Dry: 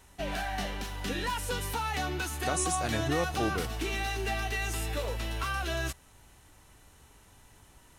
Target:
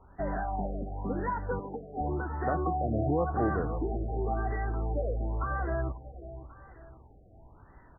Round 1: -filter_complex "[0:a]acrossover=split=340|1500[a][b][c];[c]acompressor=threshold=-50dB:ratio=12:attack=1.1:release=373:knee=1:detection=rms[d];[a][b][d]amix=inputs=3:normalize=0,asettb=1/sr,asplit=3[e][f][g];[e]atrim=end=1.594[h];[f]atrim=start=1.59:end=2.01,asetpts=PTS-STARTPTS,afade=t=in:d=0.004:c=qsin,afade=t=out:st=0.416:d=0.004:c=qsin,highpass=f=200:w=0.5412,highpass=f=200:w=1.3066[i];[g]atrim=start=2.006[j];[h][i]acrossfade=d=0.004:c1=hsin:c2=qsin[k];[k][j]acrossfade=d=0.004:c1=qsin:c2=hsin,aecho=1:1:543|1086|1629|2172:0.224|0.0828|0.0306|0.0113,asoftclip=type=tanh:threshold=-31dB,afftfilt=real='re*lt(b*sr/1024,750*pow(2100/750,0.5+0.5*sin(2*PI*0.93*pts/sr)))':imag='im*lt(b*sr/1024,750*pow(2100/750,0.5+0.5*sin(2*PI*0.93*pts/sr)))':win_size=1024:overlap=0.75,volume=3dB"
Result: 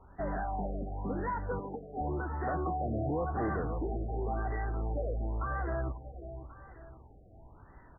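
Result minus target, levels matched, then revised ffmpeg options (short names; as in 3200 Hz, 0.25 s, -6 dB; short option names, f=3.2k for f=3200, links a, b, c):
soft clip: distortion +14 dB
-filter_complex "[0:a]acrossover=split=340|1500[a][b][c];[c]acompressor=threshold=-50dB:ratio=12:attack=1.1:release=373:knee=1:detection=rms[d];[a][b][d]amix=inputs=3:normalize=0,asettb=1/sr,asplit=3[e][f][g];[e]atrim=end=1.594[h];[f]atrim=start=1.59:end=2.01,asetpts=PTS-STARTPTS,afade=t=in:d=0.004:c=qsin,afade=t=out:st=0.416:d=0.004:c=qsin,highpass=f=200:w=0.5412,highpass=f=200:w=1.3066[i];[g]atrim=start=2.006[j];[h][i]acrossfade=d=0.004:c1=hsin:c2=qsin[k];[k][j]acrossfade=d=0.004:c1=qsin:c2=hsin,aecho=1:1:543|1086|1629|2172:0.224|0.0828|0.0306|0.0113,asoftclip=type=tanh:threshold=-19.5dB,afftfilt=real='re*lt(b*sr/1024,750*pow(2100/750,0.5+0.5*sin(2*PI*0.93*pts/sr)))':imag='im*lt(b*sr/1024,750*pow(2100/750,0.5+0.5*sin(2*PI*0.93*pts/sr)))':win_size=1024:overlap=0.75,volume=3dB"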